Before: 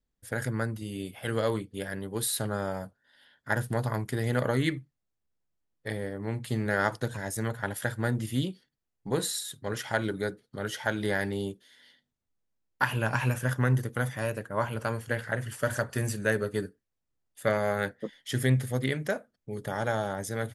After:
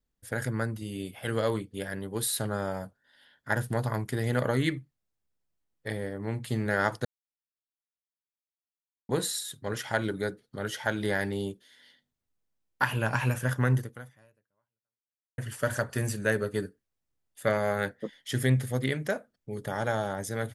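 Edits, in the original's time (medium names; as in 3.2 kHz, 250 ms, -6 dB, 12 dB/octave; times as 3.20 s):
7.05–9.09 s: mute
13.77–15.38 s: fade out exponential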